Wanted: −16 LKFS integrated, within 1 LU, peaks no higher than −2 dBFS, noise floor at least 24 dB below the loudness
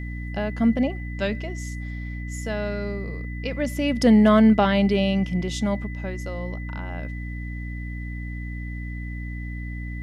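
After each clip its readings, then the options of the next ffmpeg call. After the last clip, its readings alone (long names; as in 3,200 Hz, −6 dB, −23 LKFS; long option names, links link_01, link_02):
mains hum 60 Hz; hum harmonics up to 300 Hz; level of the hum −29 dBFS; interfering tone 2,000 Hz; level of the tone −40 dBFS; integrated loudness −24.5 LKFS; sample peak −5.5 dBFS; target loudness −16.0 LKFS
→ -af "bandreject=frequency=60:width_type=h:width=6,bandreject=frequency=120:width_type=h:width=6,bandreject=frequency=180:width_type=h:width=6,bandreject=frequency=240:width_type=h:width=6,bandreject=frequency=300:width_type=h:width=6"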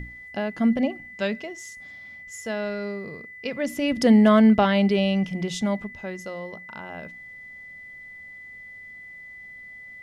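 mains hum none found; interfering tone 2,000 Hz; level of the tone −40 dBFS
→ -af "bandreject=frequency=2000:width=30"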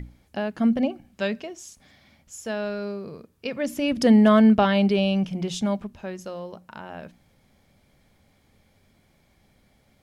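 interfering tone none found; integrated loudness −22.5 LKFS; sample peak −6.5 dBFS; target loudness −16.0 LKFS
→ -af "volume=6.5dB,alimiter=limit=-2dB:level=0:latency=1"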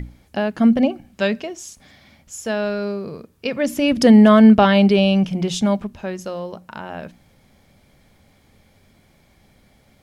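integrated loudness −16.5 LKFS; sample peak −2.0 dBFS; background noise floor −56 dBFS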